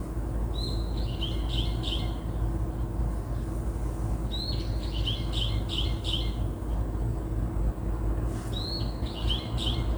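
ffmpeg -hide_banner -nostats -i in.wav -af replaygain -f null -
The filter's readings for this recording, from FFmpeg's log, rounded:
track_gain = +12.0 dB
track_peak = 0.114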